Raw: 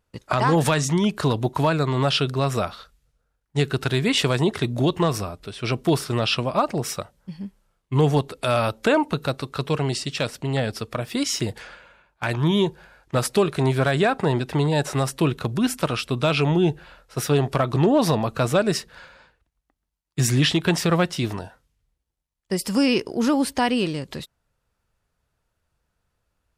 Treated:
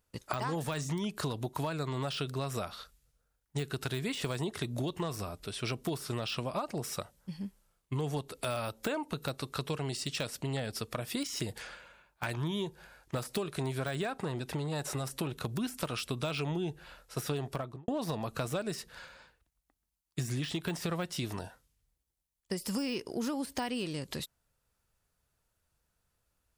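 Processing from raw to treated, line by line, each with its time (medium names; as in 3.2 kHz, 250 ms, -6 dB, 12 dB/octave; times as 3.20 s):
14.21–15.41 s: transformer saturation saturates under 400 Hz
17.40–17.88 s: studio fade out
whole clip: de-esser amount 65%; treble shelf 5.7 kHz +11 dB; compression, threshold -26 dBFS; trim -5.5 dB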